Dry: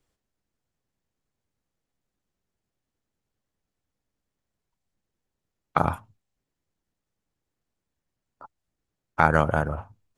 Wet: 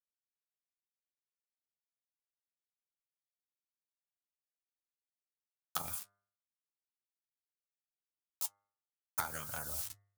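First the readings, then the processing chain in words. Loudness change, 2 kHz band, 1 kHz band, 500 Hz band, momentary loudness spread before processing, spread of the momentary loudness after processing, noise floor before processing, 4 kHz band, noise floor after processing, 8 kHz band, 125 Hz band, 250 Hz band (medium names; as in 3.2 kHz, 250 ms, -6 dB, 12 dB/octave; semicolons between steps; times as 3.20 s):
-15.5 dB, -19.0 dB, -20.5 dB, -25.5 dB, 18 LU, 3 LU, -85 dBFS, 0.0 dB, under -85 dBFS, no reading, -25.0 dB, -26.0 dB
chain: bit crusher 8-bit; compression 12:1, threshold -30 dBFS, peak gain reduction 18.5 dB; tone controls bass +8 dB, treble +8 dB; LFO notch saw down 2.3 Hz 290–4400 Hz; flange 0.74 Hz, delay 7.9 ms, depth 5.4 ms, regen -40%; pre-emphasis filter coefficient 0.97; de-hum 100.6 Hz, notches 21; trim +15 dB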